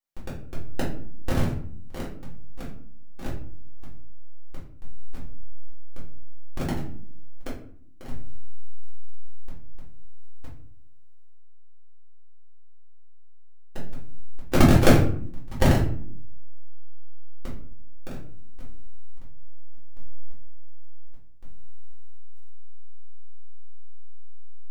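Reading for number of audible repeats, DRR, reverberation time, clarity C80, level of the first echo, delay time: no echo audible, −7.5 dB, 0.55 s, 11.0 dB, no echo audible, no echo audible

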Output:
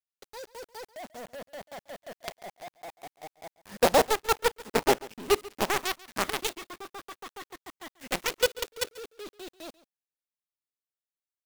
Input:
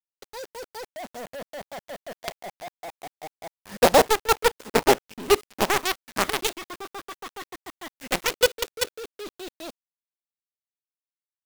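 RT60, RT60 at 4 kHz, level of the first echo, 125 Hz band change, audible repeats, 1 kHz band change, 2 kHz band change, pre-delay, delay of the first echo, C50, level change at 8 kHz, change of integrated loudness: no reverb audible, no reverb audible, −20.0 dB, −5.0 dB, 1, −5.0 dB, −5.0 dB, no reverb audible, 139 ms, no reverb audible, −5.0 dB, −5.0 dB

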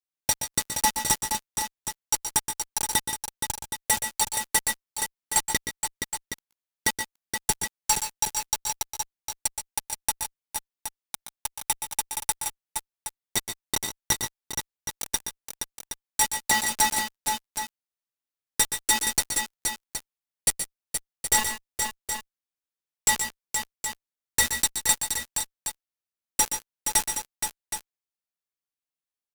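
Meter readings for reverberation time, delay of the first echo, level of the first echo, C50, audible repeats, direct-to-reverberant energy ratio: no reverb audible, 123 ms, −9.5 dB, no reverb audible, 3, no reverb audible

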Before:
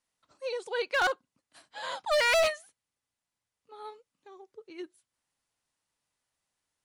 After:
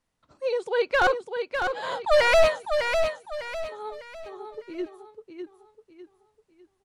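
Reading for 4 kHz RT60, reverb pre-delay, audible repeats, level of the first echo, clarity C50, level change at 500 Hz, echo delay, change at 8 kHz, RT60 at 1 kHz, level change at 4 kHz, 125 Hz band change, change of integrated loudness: no reverb audible, no reverb audible, 4, −6.0 dB, no reverb audible, +8.5 dB, 602 ms, −0.5 dB, no reverb audible, +2.0 dB, can't be measured, +4.0 dB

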